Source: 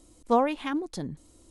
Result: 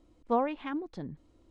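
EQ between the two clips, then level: low-pass 2.8 kHz 12 dB/octave; -5.0 dB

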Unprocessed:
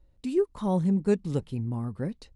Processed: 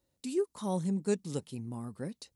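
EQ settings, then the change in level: high-pass 130 Hz 12 dB/octave; tone controls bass +1 dB, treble +13 dB; bass shelf 220 Hz -4 dB; -5.0 dB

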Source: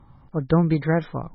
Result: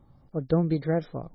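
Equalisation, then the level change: bass shelf 370 Hz -7 dB; high-order bell 1.7 kHz -10.5 dB 2.3 oct; band-stop 970 Hz, Q 19; 0.0 dB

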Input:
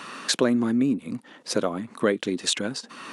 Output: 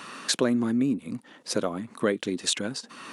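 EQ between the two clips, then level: bass shelf 100 Hz +5.5 dB; treble shelf 7.1 kHz +4.5 dB; -3.0 dB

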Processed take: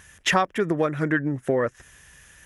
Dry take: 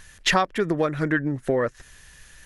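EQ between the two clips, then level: high-pass 56 Hz; peaking EQ 4.3 kHz -10 dB 0.37 oct; 0.0 dB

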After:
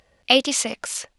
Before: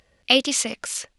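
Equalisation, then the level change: peaking EQ 790 Hz +5 dB 1.1 oct; 0.0 dB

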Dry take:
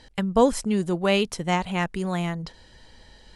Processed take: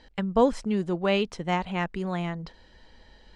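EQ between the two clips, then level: distance through air 84 m; peaking EQ 110 Hz -13.5 dB 0.4 oct; treble shelf 6 kHz -5 dB; -2.0 dB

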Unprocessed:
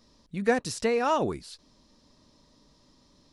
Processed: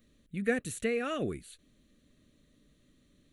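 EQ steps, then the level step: treble shelf 7.2 kHz +8 dB; static phaser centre 2.2 kHz, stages 4; -2.5 dB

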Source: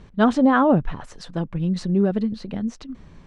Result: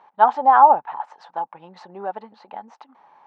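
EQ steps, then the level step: resonant high-pass 850 Hz, resonance Q 10; distance through air 110 m; treble shelf 2.6 kHz -11 dB; -1.0 dB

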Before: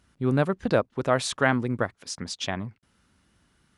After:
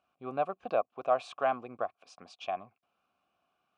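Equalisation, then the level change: vowel filter a; +4.0 dB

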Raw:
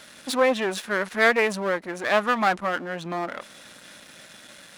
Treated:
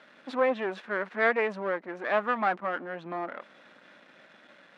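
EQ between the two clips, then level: band-pass 220–2100 Hz; -4.5 dB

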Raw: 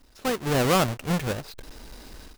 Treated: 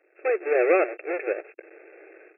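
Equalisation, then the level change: brick-wall FIR band-pass 320–2700 Hz; static phaser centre 410 Hz, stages 4; +6.0 dB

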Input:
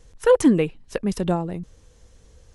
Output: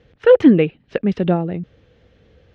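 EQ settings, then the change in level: high-pass 100 Hz 12 dB/octave; low-pass 3.3 kHz 24 dB/octave; peaking EQ 1 kHz -9.5 dB 0.49 oct; +6.0 dB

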